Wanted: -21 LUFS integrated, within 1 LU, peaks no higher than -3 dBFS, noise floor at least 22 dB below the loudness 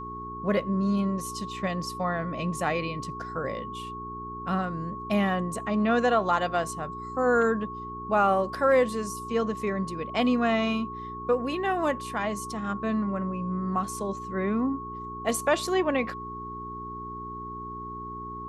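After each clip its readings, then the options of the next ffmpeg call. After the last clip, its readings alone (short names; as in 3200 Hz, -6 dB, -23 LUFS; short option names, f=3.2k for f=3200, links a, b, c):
hum 60 Hz; harmonics up to 420 Hz; hum level -40 dBFS; steady tone 1100 Hz; tone level -36 dBFS; loudness -28.5 LUFS; peak -11.5 dBFS; loudness target -21.0 LUFS
-> -af "bandreject=f=60:t=h:w=4,bandreject=f=120:t=h:w=4,bandreject=f=180:t=h:w=4,bandreject=f=240:t=h:w=4,bandreject=f=300:t=h:w=4,bandreject=f=360:t=h:w=4,bandreject=f=420:t=h:w=4"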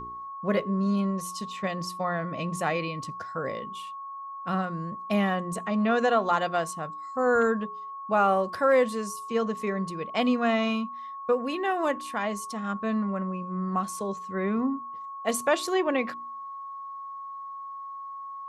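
hum none; steady tone 1100 Hz; tone level -36 dBFS
-> -af "bandreject=f=1.1k:w=30"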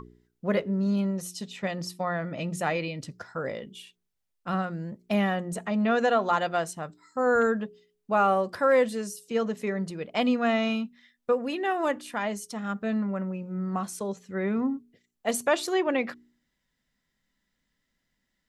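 steady tone none; loudness -28.0 LUFS; peak -12.0 dBFS; loudness target -21.0 LUFS
-> -af "volume=7dB"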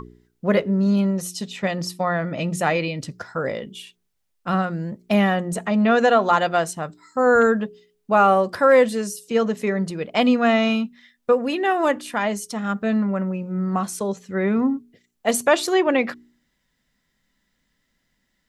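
loudness -21.0 LUFS; peak -5.0 dBFS; noise floor -72 dBFS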